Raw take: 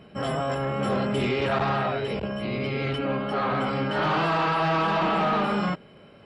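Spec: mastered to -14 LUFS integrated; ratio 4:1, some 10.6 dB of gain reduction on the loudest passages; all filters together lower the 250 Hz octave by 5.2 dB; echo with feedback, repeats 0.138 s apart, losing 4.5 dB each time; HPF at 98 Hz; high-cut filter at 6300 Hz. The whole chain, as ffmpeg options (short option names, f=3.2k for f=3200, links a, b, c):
-af "highpass=98,lowpass=6.3k,equalizer=f=250:t=o:g=-7,acompressor=threshold=-35dB:ratio=4,aecho=1:1:138|276|414|552|690|828|966|1104|1242:0.596|0.357|0.214|0.129|0.0772|0.0463|0.0278|0.0167|0.01,volume=20.5dB"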